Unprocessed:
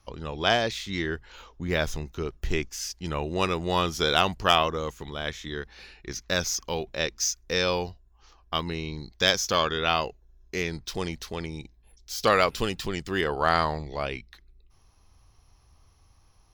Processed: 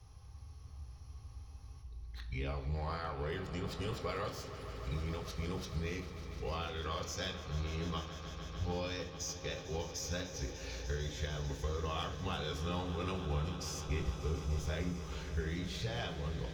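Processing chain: reverse the whole clip; compression 3:1, threshold -44 dBFS, peak gain reduction 21 dB; echo with a slow build-up 149 ms, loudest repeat 5, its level -15.5 dB; on a send at -1.5 dB: reverberation RT60 0.55 s, pre-delay 3 ms; on the sum: trim -2.5 dB

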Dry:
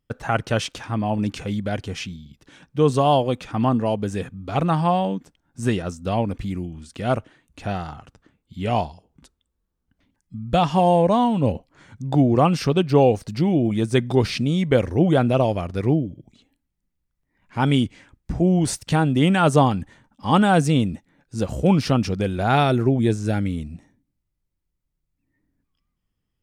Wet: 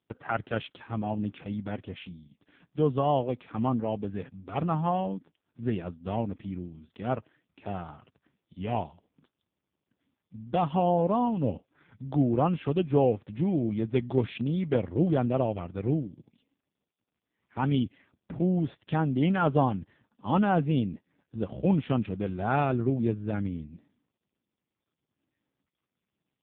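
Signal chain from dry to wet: trim -7 dB; AMR-NB 5.15 kbps 8 kHz

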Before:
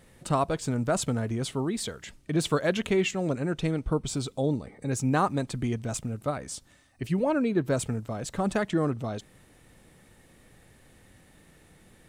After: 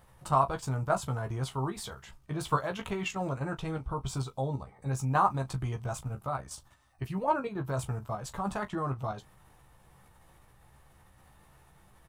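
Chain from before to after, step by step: graphic EQ 250/500/1000/2000/4000/8000 Hz -12/-7/+8/-8/-5/-8 dB; level held to a coarse grid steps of 9 dB; on a send: early reflections 15 ms -5 dB, 38 ms -16 dB; on the sum: trim +3 dB

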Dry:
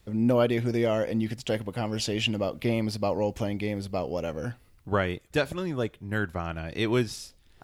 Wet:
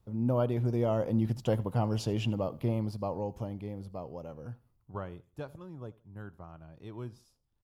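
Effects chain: Doppler pass-by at 1.62 s, 5 m/s, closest 3.7 m; ten-band graphic EQ 125 Hz +8 dB, 1 kHz +7 dB, 2 kHz -11 dB, 4 kHz -5 dB, 8 kHz -6 dB; feedback delay 81 ms, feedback 34%, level -22 dB; trim -2.5 dB

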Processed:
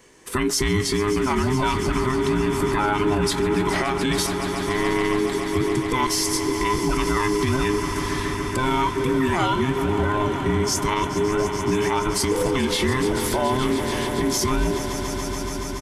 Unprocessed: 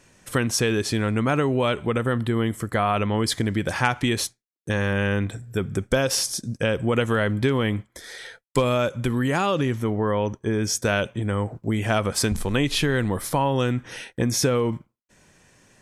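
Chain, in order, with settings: every band turned upside down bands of 500 Hz; doubling 22 ms -11 dB; echo with a slow build-up 142 ms, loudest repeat 5, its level -15 dB; peak limiter -15.5 dBFS, peak gain reduction 10 dB; trim +3 dB

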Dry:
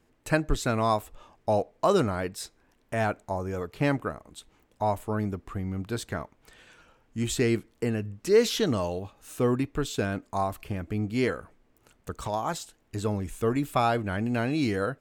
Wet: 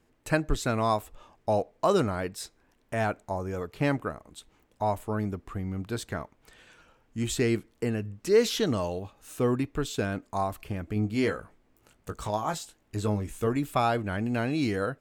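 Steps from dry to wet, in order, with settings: 10.94–13.47 s: doubling 19 ms -7.5 dB; trim -1 dB

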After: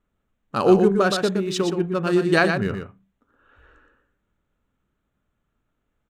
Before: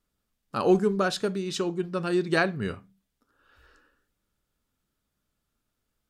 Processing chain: local Wiener filter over 9 samples; delay 120 ms -6.5 dB; trim +5.5 dB

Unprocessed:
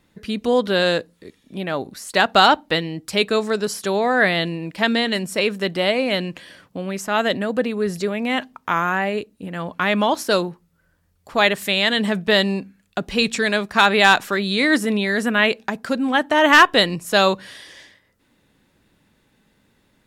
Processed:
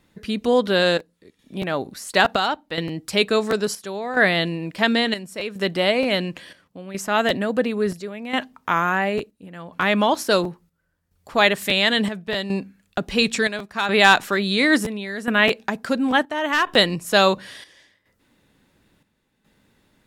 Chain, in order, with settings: square tremolo 0.72 Hz, depth 65%, duty 70%; crackling interface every 0.63 s, samples 512, repeat, from 0.98 s

